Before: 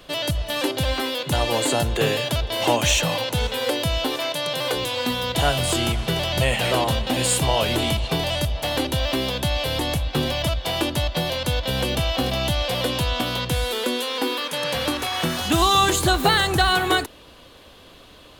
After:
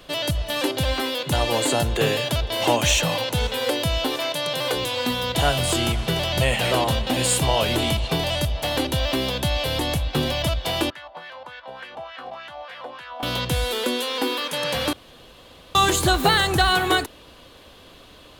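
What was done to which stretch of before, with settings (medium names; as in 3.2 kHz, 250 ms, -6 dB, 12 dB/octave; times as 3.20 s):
10.90–13.23 s: wah-wah 3.4 Hz 750–1800 Hz, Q 3.9
14.93–15.75 s: room tone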